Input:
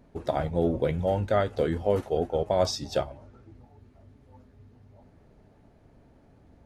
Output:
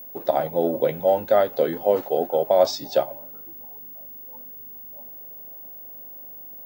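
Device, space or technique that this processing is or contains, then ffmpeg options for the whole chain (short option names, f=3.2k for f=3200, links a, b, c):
old television with a line whistle: -af "highpass=f=160:w=0.5412,highpass=f=160:w=1.3066,equalizer=f=180:t=q:w=4:g=-6,equalizer=f=560:t=q:w=4:g=7,equalizer=f=800:t=q:w=4:g=6,equalizer=f=4.1k:t=q:w=4:g=4,lowpass=f=7.5k:w=0.5412,lowpass=f=7.5k:w=1.3066,aeval=exprs='val(0)+0.0112*sin(2*PI*15625*n/s)':c=same,volume=1.5dB"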